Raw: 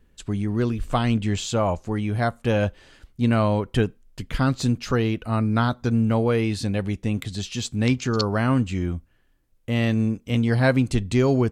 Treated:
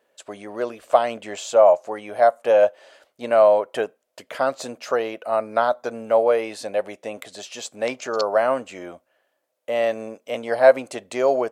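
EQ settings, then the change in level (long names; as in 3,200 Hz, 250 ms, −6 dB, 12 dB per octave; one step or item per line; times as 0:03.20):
dynamic equaliser 3,800 Hz, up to −5 dB, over −47 dBFS, Q 1.2
high-pass with resonance 600 Hz, resonance Q 5.2
0.0 dB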